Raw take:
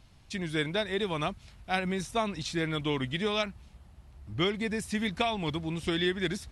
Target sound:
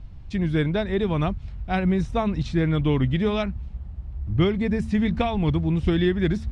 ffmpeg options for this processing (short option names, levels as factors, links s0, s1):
-af "lowpass=9900,aemphasis=mode=reproduction:type=riaa,bandreject=f=111:t=h:w=4,bandreject=f=222:t=h:w=4,volume=1.41"